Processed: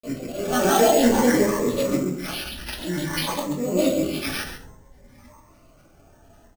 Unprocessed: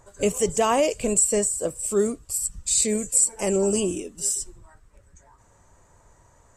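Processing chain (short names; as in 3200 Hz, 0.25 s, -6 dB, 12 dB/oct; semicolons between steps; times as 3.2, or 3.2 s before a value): spectral swells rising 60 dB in 0.62 s; HPF 87 Hz 6 dB/oct; bell 8800 Hz -7.5 dB 1 oct; comb 5.1 ms, depth 37%; auto swell 0.417 s; grains, pitch spread up and down by 7 st; outdoor echo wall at 23 m, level -8 dB; shoebox room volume 300 m³, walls furnished, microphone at 2.5 m; careless resampling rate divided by 6×, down none, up hold; cascading phaser rising 0.54 Hz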